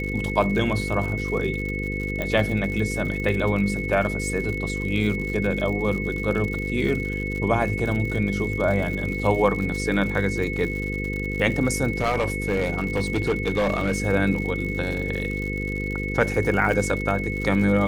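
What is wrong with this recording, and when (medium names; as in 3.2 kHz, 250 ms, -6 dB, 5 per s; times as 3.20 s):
buzz 50 Hz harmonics 10 -29 dBFS
crackle 100 per s -30 dBFS
whine 2.2 kHz -30 dBFS
2.22 s: pop -14 dBFS
11.98–14.02 s: clipped -17.5 dBFS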